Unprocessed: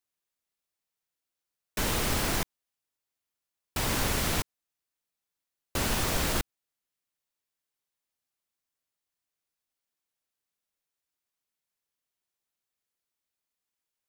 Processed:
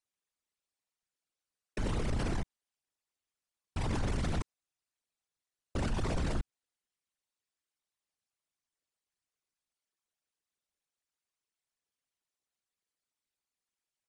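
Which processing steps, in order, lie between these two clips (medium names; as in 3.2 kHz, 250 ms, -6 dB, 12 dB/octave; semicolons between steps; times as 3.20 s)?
resonances exaggerated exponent 2; resampled via 22.05 kHz; trim -3 dB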